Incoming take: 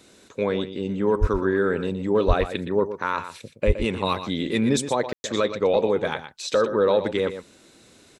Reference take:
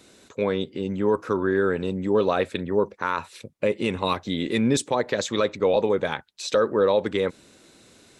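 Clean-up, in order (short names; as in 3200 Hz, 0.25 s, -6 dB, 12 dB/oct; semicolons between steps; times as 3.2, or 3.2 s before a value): 1.2–1.32 HPF 140 Hz 24 dB/oct; 2.27–2.39 HPF 140 Hz 24 dB/oct; 3.66–3.78 HPF 140 Hz 24 dB/oct; room tone fill 5.13–5.24; inverse comb 0.119 s -11 dB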